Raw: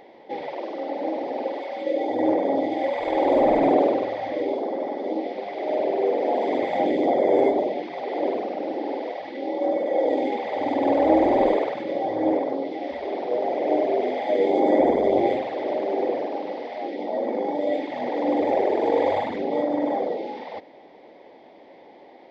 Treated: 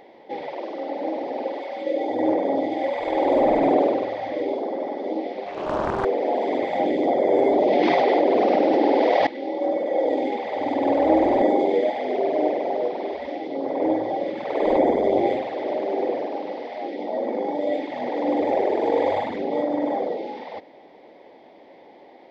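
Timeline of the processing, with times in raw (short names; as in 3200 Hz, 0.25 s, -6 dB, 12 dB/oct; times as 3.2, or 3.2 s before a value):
5.46–6.05 Doppler distortion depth 0.76 ms
7.47–9.27 fast leveller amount 100%
11.42–14.77 reverse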